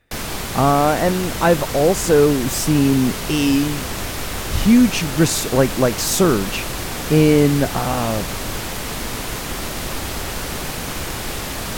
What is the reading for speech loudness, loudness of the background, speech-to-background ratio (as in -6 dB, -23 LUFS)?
-17.5 LUFS, -25.5 LUFS, 8.0 dB